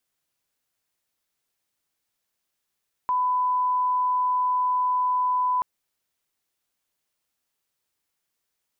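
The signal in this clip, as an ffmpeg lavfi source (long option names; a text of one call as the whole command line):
ffmpeg -f lavfi -i "sine=frequency=1000:duration=2.53:sample_rate=44100,volume=-1.94dB" out.wav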